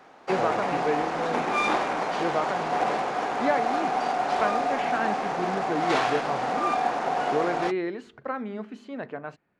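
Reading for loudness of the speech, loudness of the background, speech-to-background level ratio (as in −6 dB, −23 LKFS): −31.5 LKFS, −27.0 LKFS, −4.5 dB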